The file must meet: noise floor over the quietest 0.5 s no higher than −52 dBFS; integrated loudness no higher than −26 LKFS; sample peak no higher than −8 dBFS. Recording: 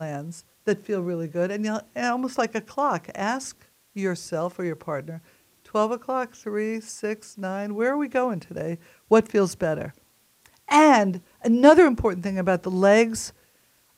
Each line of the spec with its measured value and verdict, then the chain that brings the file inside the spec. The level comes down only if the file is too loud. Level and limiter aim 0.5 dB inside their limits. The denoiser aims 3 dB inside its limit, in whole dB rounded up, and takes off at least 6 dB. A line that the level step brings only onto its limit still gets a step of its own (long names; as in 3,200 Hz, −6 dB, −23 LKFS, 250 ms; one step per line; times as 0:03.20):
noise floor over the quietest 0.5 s −62 dBFS: in spec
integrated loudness −23.5 LKFS: out of spec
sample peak −4.0 dBFS: out of spec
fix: level −3 dB
brickwall limiter −8.5 dBFS